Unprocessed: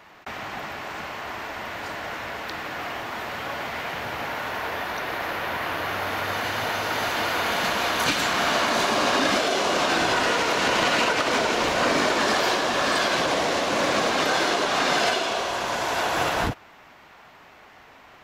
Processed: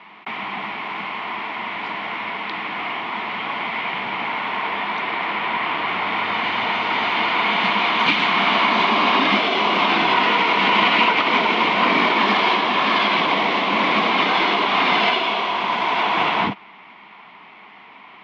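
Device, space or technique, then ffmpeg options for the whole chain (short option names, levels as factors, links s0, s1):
kitchen radio: -af "highpass=200,equalizer=f=200:t=q:w=4:g=10,equalizer=f=550:t=q:w=4:g=-9,equalizer=f=1000:t=q:w=4:g=8,equalizer=f=1600:t=q:w=4:g=-7,equalizer=f=2200:t=q:w=4:g=9,equalizer=f=3200:t=q:w=4:g=5,lowpass=f=3700:w=0.5412,lowpass=f=3700:w=1.3066,volume=1.41"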